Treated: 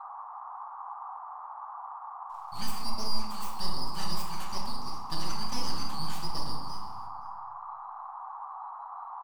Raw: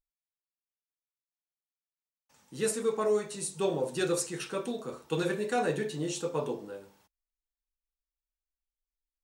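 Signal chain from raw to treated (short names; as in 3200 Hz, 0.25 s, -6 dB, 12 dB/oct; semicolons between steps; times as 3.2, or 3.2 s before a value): band-swap scrambler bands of 2000 Hz; high shelf 3600 Hz -7 dB; in parallel at +3 dB: compressor, threshold -38 dBFS, peak gain reduction 12 dB; on the sum: full-wave rectifier; on a send: echo 0.52 s -23.5 dB; on the sum: shoebox room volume 560 m³, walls mixed, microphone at 1.1 m; band noise 770–1200 Hz -35 dBFS; gain -6.5 dB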